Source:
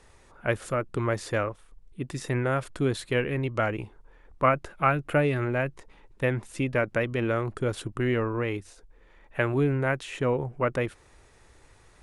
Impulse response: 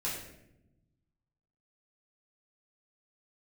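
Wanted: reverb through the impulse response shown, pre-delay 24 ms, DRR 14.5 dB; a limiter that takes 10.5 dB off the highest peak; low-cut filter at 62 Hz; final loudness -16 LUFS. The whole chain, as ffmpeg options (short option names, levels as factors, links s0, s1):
-filter_complex "[0:a]highpass=62,alimiter=limit=0.133:level=0:latency=1,asplit=2[s0][s1];[1:a]atrim=start_sample=2205,adelay=24[s2];[s1][s2]afir=irnorm=-1:irlink=0,volume=0.119[s3];[s0][s3]amix=inputs=2:normalize=0,volume=5.01"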